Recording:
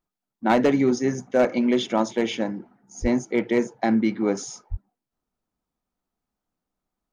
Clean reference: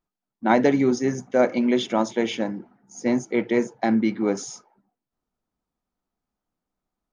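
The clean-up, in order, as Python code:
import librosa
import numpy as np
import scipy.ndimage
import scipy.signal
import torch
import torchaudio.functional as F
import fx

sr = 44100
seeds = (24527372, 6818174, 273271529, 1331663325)

y = fx.fix_declip(x, sr, threshold_db=-11.5)
y = fx.highpass(y, sr, hz=140.0, slope=24, at=(3.01, 3.13), fade=0.02)
y = fx.highpass(y, sr, hz=140.0, slope=24, at=(4.7, 4.82), fade=0.02)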